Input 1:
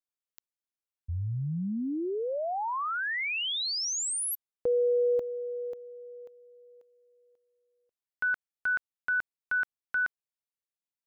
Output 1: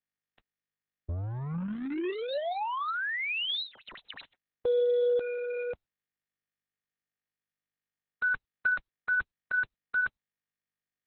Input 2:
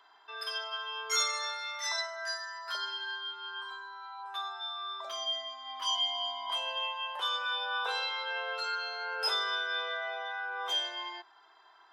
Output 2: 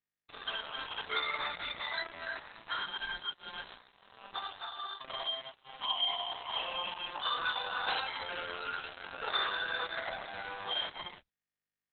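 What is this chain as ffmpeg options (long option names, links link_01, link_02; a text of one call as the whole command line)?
ffmpeg -i in.wav -af "acrusher=bits=5:mix=0:aa=0.5" -ar 48000 -c:a libopus -b:a 6k out.opus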